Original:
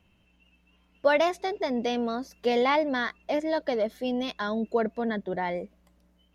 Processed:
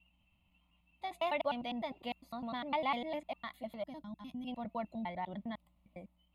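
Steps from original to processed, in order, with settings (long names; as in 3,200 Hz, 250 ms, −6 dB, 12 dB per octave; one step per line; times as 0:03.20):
slices reordered back to front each 101 ms, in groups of 5
gain on a spectral selection 0:03.84–0:04.47, 340–5,000 Hz −14 dB
phaser with its sweep stopped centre 1,600 Hz, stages 6
level −7 dB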